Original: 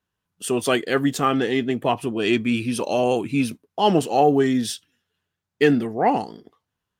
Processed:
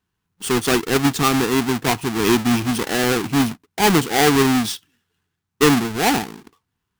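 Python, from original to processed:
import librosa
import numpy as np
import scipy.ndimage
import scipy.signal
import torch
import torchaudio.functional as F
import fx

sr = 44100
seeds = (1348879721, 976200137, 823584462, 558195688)

y = fx.halfwave_hold(x, sr)
y = fx.peak_eq(y, sr, hz=580.0, db=-15.0, octaves=0.33)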